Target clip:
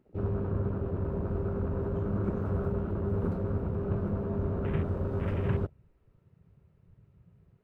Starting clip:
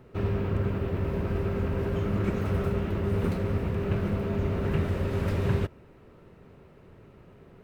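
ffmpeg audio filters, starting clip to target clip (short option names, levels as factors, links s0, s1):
-af "afwtdn=0.0126,volume=0.708"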